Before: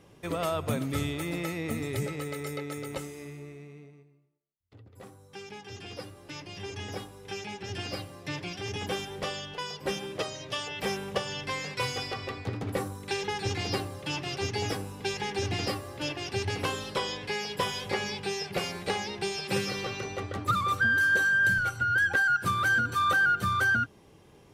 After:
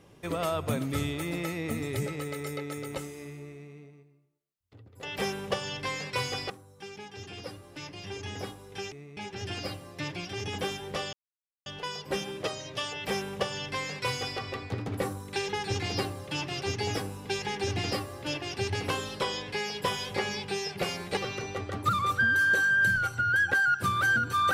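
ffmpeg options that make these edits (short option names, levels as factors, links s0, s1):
-filter_complex "[0:a]asplit=7[s0][s1][s2][s3][s4][s5][s6];[s0]atrim=end=5.032[s7];[s1]atrim=start=10.668:end=12.142[s8];[s2]atrim=start=5.028:end=7.452[s9];[s3]atrim=start=3.528:end=3.782[s10];[s4]atrim=start=7.448:end=9.41,asetpts=PTS-STARTPTS,afade=t=out:st=1.958:d=0.004:c=hsin,apad=pad_dur=0.53[s11];[s5]atrim=start=9.41:end=18.922,asetpts=PTS-STARTPTS,afade=t=in:d=0.004:c=hsin[s12];[s6]atrim=start=19.788[s13];[s7][s8]acrossfade=d=0.004:c1=hsin:c2=hsin[s14];[s14][s9]acrossfade=d=0.004:c1=hsin:c2=hsin[s15];[s15][s10]acrossfade=d=0.004:c1=hsin:c2=hsin[s16];[s11][s12]concat=n=2:v=0:a=1[s17];[s16][s17]acrossfade=d=0.004:c1=hsin:c2=hsin[s18];[s18][s13]acrossfade=d=0.004:c1=hsin:c2=hsin"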